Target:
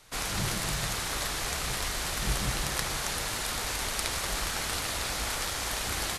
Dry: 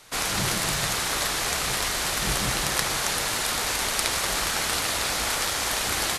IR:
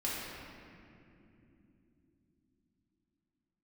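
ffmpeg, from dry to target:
-af "lowshelf=frequency=110:gain=10,volume=-6.5dB"

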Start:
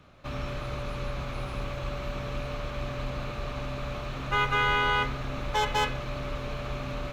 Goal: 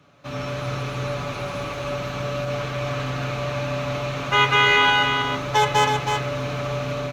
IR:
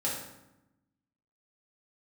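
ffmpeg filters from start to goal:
-filter_complex "[0:a]highpass=110,equalizer=frequency=6100:width_type=o:width=0.3:gain=5,aecho=1:1:7:0.42,asettb=1/sr,asplit=3[link_01][link_02][link_03];[link_01]atrim=end=2.454[link_04];[link_02]atrim=start=2.45:end=4.9,asetpts=PTS-STARTPTS,afade=type=in:duration=0.004:curve=qsin,afade=type=out:start_time=2.446:duration=0.004:curve=qsin,adynamicequalizer=threshold=0.00891:dfrequency=2300:dqfactor=0.81:tfrequency=2300:tqfactor=0.81:attack=5:release=100:ratio=0.375:range=3:mode=boostabove:tftype=bell[link_05];[link_03]atrim=start=4.896[link_06];[link_04][link_05]acrossfade=duration=0.004:curve1=hsin:curve2=qsin[link_07];[link_07][link_06]acrossfade=duration=0.004:curve1=qsin:curve2=hsin,dynaudnorm=framelen=200:gausssize=3:maxgain=6dB,aecho=1:1:321:0.531"

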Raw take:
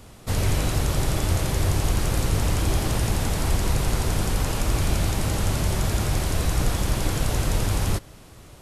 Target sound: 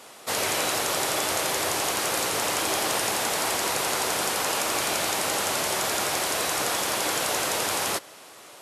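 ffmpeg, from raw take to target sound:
ffmpeg -i in.wav -af "highpass=530,afftfilt=real='re*gte(hypot(re,im),0.000708)':imag='im*gte(hypot(re,im),0.000708)':win_size=1024:overlap=0.75,acontrast=45" out.wav

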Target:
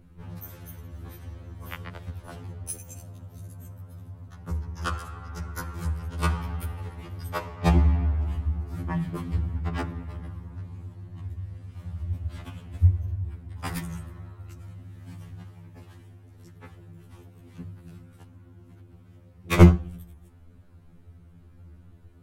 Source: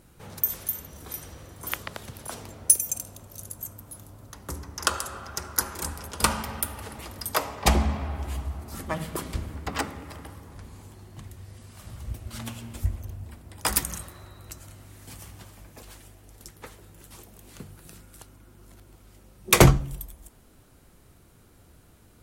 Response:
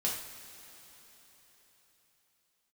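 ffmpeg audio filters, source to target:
-af "bass=frequency=250:gain=12,treble=frequency=4000:gain=-13,afftfilt=real='re*2*eq(mod(b,4),0)':imag='im*2*eq(mod(b,4),0)':win_size=2048:overlap=0.75,volume=-2.5dB"

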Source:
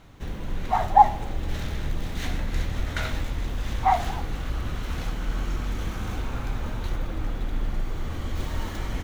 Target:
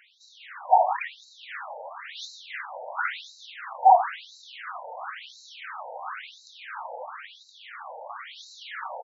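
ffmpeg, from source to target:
ffmpeg -i in.wav -filter_complex "[0:a]aecho=1:1:153:0.188,asplit=2[link_01][link_02];[link_02]highpass=frequency=720:poles=1,volume=17dB,asoftclip=type=tanh:threshold=-2.5dB[link_03];[link_01][link_03]amix=inputs=2:normalize=0,lowpass=frequency=1700:poles=1,volume=-6dB,afftfilt=real='re*between(b*sr/1024,660*pow(5400/660,0.5+0.5*sin(2*PI*0.97*pts/sr))/1.41,660*pow(5400/660,0.5+0.5*sin(2*PI*0.97*pts/sr))*1.41)':imag='im*between(b*sr/1024,660*pow(5400/660,0.5+0.5*sin(2*PI*0.97*pts/sr))/1.41,660*pow(5400/660,0.5+0.5*sin(2*PI*0.97*pts/sr))*1.41)':win_size=1024:overlap=0.75" out.wav

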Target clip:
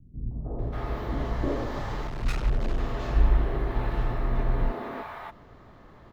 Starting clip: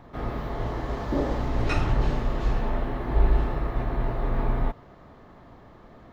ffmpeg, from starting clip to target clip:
ffmpeg -i in.wav -filter_complex "[0:a]asettb=1/sr,asplit=3[link_01][link_02][link_03];[link_01]atrim=end=1.484[link_04];[link_02]atrim=start=1.48:end=2.21,asetpts=PTS-STARTPTS,afade=type=in:duration=0.004:curve=qsin,afade=type=out:start_time=0.726:duration=0.004:curve=qsin,volume=30dB,asoftclip=hard,volume=-30dB[link_05];[link_03]atrim=start=2.206[link_06];[link_04][link_05]acrossfade=duration=0.004:curve1=hsin:curve2=qsin[link_07];[link_07][link_06]acrossfade=duration=0.004:curve1=qsin:curve2=hsin,acrossover=split=230|710[link_08][link_09][link_10];[link_09]adelay=310[link_11];[link_10]adelay=590[link_12];[link_08][link_11][link_12]amix=inputs=3:normalize=0" out.wav

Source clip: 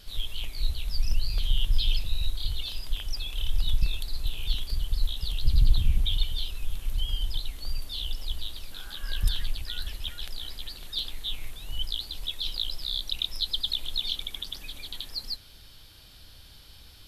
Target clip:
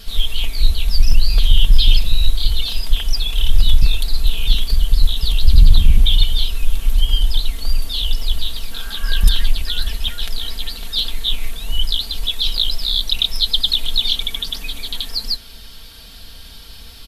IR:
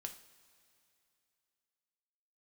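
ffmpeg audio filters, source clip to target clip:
-af "aecho=1:1:4.4:0.68,apsyclip=12dB,volume=-1.5dB"

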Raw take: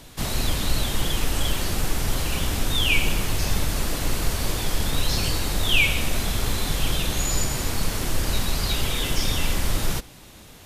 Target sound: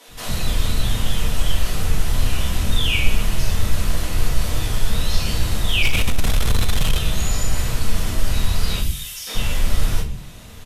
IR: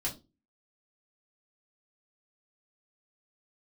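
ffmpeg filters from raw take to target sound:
-filter_complex "[0:a]asplit=2[link_01][link_02];[link_02]acompressor=threshold=-30dB:ratio=6,volume=1dB[link_03];[link_01][link_03]amix=inputs=2:normalize=0,asettb=1/sr,asplit=3[link_04][link_05][link_06];[link_04]atrim=end=8.794[link_07];[link_05]atrim=start=8.79:end=9.27,asetpts=PTS-STARTPTS,afade=type=in:duration=0.004:curve=qsin,afade=type=out:start_time=0.476:duration=0.004:curve=qsin,aderivative[link_08];[link_06]atrim=start=9.266[link_09];[link_07][link_08]acrossfade=duration=0.004:curve1=hsin:curve2=qsin[link_10];[link_10][link_09]acrossfade=duration=0.004:curve1=qsin:curve2=hsin,acrossover=split=300[link_11][link_12];[link_11]adelay=80[link_13];[link_13][link_12]amix=inputs=2:normalize=0[link_14];[1:a]atrim=start_sample=2205,asetrate=28224,aresample=44100[link_15];[link_14][link_15]afir=irnorm=-1:irlink=0,asplit=3[link_16][link_17][link_18];[link_16]afade=type=out:start_time=5.82:duration=0.02[link_19];[link_17]acontrast=87,afade=type=in:start_time=5.82:duration=0.02,afade=type=out:start_time=6.97:duration=0.02[link_20];[link_18]afade=type=in:start_time=6.97:duration=0.02[link_21];[link_19][link_20][link_21]amix=inputs=3:normalize=0,volume=-9dB"

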